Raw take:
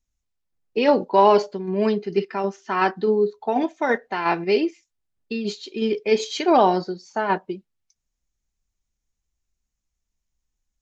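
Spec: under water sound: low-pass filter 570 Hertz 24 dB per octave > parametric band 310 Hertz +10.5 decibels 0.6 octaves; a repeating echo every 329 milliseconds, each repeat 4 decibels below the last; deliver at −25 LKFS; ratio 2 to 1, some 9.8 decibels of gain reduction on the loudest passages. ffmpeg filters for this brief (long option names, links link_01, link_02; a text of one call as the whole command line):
ffmpeg -i in.wav -af "acompressor=threshold=-29dB:ratio=2,lowpass=frequency=570:width=0.5412,lowpass=frequency=570:width=1.3066,equalizer=frequency=310:width_type=o:width=0.6:gain=10.5,aecho=1:1:329|658|987|1316|1645|1974|2303|2632|2961:0.631|0.398|0.25|0.158|0.0994|0.0626|0.0394|0.0249|0.0157" out.wav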